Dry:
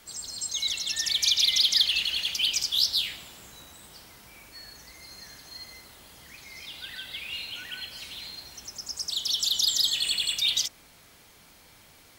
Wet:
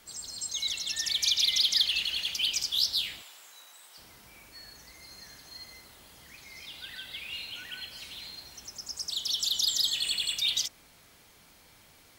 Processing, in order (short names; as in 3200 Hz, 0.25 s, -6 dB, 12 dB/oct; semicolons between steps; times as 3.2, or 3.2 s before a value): 3.22–3.98 HPF 750 Hz 12 dB/oct; gain -3 dB